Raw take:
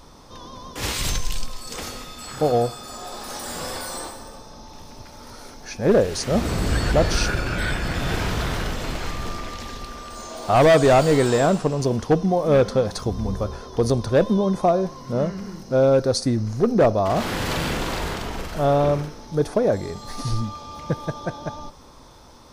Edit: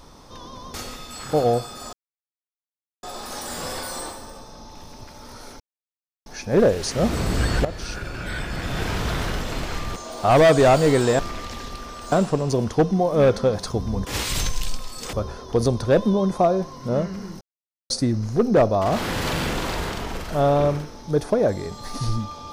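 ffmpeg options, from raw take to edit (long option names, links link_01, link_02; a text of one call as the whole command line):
ffmpeg -i in.wav -filter_complex "[0:a]asplit=12[link_01][link_02][link_03][link_04][link_05][link_06][link_07][link_08][link_09][link_10][link_11][link_12];[link_01]atrim=end=0.742[link_13];[link_02]atrim=start=1.818:end=3.01,asetpts=PTS-STARTPTS,afade=type=out:start_time=1.188:duration=0.004:curve=hsin,apad=pad_dur=1.1[link_14];[link_03]atrim=start=3.01:end=5.58,asetpts=PTS-STARTPTS,afade=type=in:duration=0.004:curve=hsin,afade=type=out:start_time=2.566:duration=0.004:curve=hsin,apad=pad_dur=0.66[link_15];[link_04]atrim=start=5.58:end=6.97,asetpts=PTS-STARTPTS,afade=type=in:duration=0.004:curve=hsin,afade=type=out:start_time=1.386:duration=0.004:curve=hsin:silence=0.188365[link_16];[link_05]atrim=start=6.97:end=9.282,asetpts=PTS-STARTPTS,afade=type=in:duration=1.52:silence=0.188365[link_17];[link_06]atrim=start=10.208:end=11.442[link_18];[link_07]atrim=start=9.278:end=10.212[link_19];[link_08]atrim=start=11.438:end=13.372[link_20];[link_09]atrim=start=0.738:end=1.822[link_21];[link_10]atrim=start=13.368:end=15.65,asetpts=PTS-STARTPTS,afade=type=out:start_time=2.278:duration=0.004:curve=hsin[link_22];[link_11]atrim=start=15.65:end=16.14,asetpts=PTS-STARTPTS,volume=0[link_23];[link_12]atrim=start=16.14,asetpts=PTS-STARTPTS,afade=type=in:duration=0.004:curve=hsin[link_24];[link_14][link_15][link_16][link_17]concat=n=4:v=0:a=1[link_25];[link_13][link_25]acrossfade=duration=0.004:curve1=hsin:curve2=hsin[link_26];[link_26][link_18]acrossfade=duration=0.004:curve1=hsin:curve2=hsin[link_27];[link_27][link_19]acrossfade=duration=0.004:curve1=hsin:curve2=hsin[link_28];[link_28][link_20]acrossfade=duration=0.004:curve1=hsin:curve2=hsin[link_29];[link_29][link_21]acrossfade=duration=0.004:curve1=hsin:curve2=hsin[link_30];[link_22][link_23][link_24]concat=n=3:v=0:a=1[link_31];[link_30][link_31]acrossfade=duration=0.004:curve1=hsin:curve2=hsin" out.wav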